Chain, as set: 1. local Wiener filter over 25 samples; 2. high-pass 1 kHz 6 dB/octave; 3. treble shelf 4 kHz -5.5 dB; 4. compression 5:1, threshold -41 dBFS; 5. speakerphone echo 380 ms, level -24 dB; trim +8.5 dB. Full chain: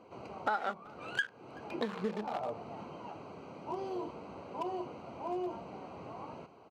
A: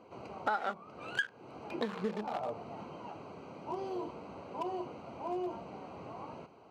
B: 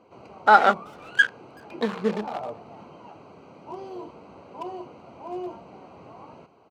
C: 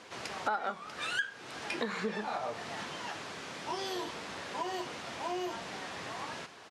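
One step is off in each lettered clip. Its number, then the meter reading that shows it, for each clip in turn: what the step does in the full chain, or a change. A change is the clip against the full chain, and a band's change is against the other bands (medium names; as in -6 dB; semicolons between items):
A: 5, echo-to-direct -31.0 dB to none; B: 4, mean gain reduction 3.0 dB; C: 1, 4 kHz band +9.5 dB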